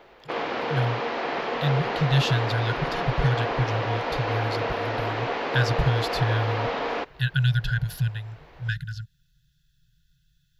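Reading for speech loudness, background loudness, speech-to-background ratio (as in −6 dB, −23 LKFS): −27.5 LKFS, −28.5 LKFS, 1.0 dB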